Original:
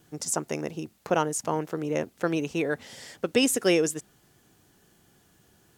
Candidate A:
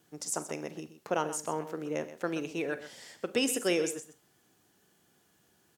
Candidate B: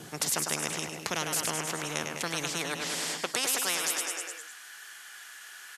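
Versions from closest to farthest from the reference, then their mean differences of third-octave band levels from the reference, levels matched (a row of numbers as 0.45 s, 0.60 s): A, B; 3.0 dB, 13.5 dB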